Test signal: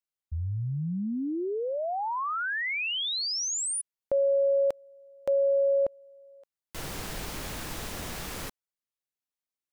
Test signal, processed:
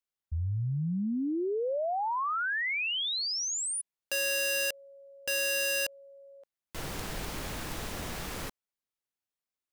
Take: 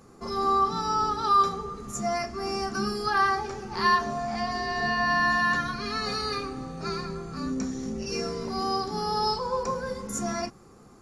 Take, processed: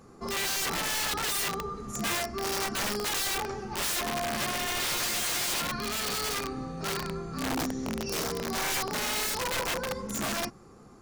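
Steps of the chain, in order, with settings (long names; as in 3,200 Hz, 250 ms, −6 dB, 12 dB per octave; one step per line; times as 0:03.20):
high-shelf EQ 3,900 Hz −3 dB
wrap-around overflow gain 25 dB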